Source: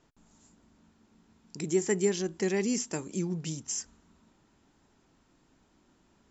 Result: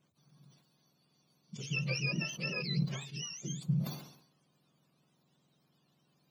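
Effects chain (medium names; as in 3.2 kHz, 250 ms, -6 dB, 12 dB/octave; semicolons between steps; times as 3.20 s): spectrum inverted on a logarithmic axis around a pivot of 1 kHz; decay stretcher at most 83 dB/s; trim -5.5 dB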